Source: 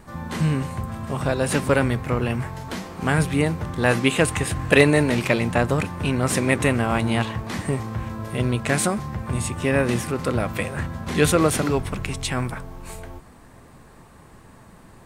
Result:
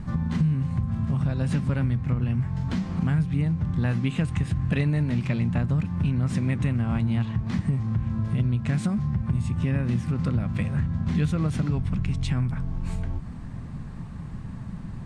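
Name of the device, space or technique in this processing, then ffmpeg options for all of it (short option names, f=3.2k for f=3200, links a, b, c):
jukebox: -af "lowpass=6k,lowshelf=f=270:t=q:w=1.5:g=13,acompressor=threshold=-24dB:ratio=4"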